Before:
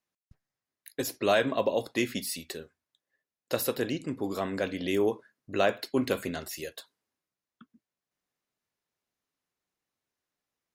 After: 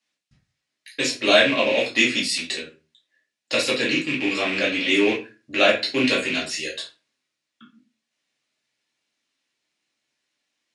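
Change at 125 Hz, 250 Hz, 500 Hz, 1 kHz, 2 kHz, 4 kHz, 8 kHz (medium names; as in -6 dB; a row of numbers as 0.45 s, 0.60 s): +1.0 dB, +7.0 dB, +6.0 dB, +5.0 dB, +14.5 dB, +16.0 dB, +8.0 dB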